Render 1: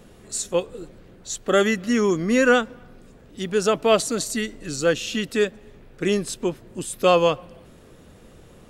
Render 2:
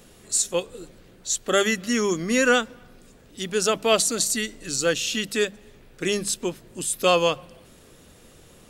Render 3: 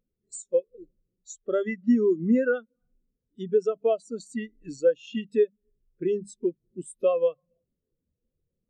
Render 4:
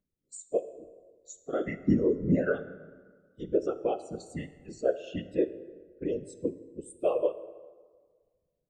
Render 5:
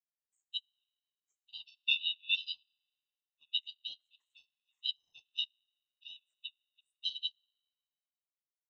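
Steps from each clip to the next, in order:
high shelf 2600 Hz +10.5 dB; notches 50/100/150/200 Hz; gain -3.5 dB
high shelf 7000 Hz -6 dB; compressor 4:1, threshold -30 dBFS, peak gain reduction 13.5 dB; spectral expander 2.5:1; gain +5.5 dB
whisperiser; plate-style reverb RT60 1.6 s, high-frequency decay 0.6×, DRR 11.5 dB; gain -5 dB
four-band scrambler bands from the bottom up 3412; ring modulator 430 Hz; upward expander 2.5:1, over -45 dBFS; gain -2.5 dB

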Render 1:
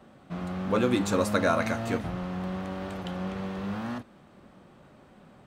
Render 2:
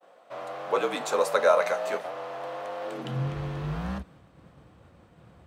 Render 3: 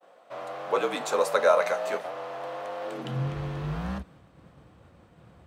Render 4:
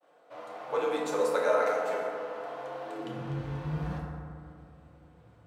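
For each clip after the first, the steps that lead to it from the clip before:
frequency shift -48 Hz; expander -51 dBFS; high-pass sweep 600 Hz -> 63 Hz, 2.83–3.34
nothing audible
FDN reverb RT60 2.3 s, low-frequency decay 1.1×, high-frequency decay 0.35×, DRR -3 dB; gain -9 dB

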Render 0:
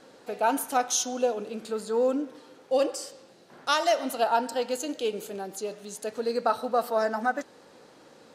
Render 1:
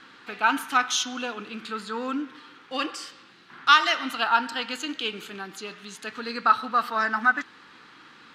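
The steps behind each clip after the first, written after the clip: EQ curve 320 Hz 0 dB, 570 Hz -15 dB, 1200 Hz +11 dB, 3300 Hz +10 dB, 5900 Hz -2 dB, 10000 Hz -8 dB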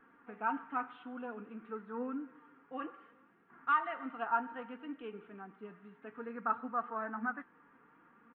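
comb 4.3 ms, depth 38%; flange 0.58 Hz, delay 2.2 ms, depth 5.4 ms, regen +61%; Gaussian blur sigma 5.3 samples; gain -5.5 dB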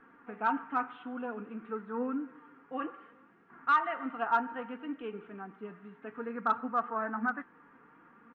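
in parallel at -5 dB: hard clip -27 dBFS, distortion -14 dB; on the sum: air absorption 100 m; gain +1.5 dB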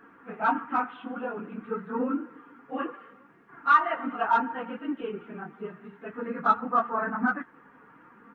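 phase scrambler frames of 50 ms; gain +5 dB

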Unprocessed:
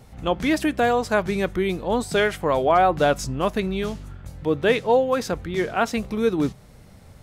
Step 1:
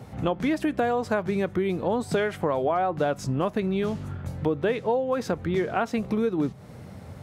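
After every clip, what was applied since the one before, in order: HPF 80 Hz 24 dB/oct; high shelf 2300 Hz -9.5 dB; compressor 6:1, threshold -30 dBFS, peak gain reduction 15 dB; gain +7.5 dB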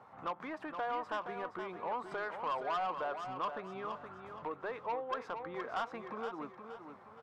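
band-pass 1100 Hz, Q 3.3; soft clip -31 dBFS, distortion -12 dB; feedback echo 0.47 s, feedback 35%, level -8 dB; gain +1 dB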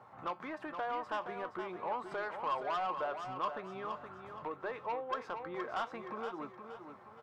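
resonator 120 Hz, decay 0.22 s, harmonics odd, mix 60%; gain +6.5 dB

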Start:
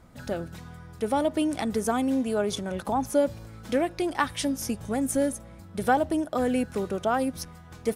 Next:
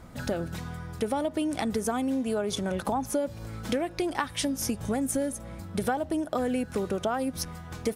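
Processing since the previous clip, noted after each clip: compressor 5:1, threshold -32 dBFS, peak gain reduction 13.5 dB; gain +6 dB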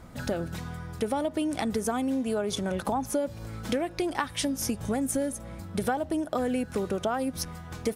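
nothing audible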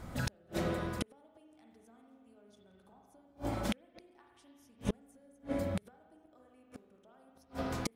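spring tank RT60 1.9 s, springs 39/53 ms, chirp 50 ms, DRR -0.5 dB; flipped gate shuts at -20 dBFS, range -36 dB

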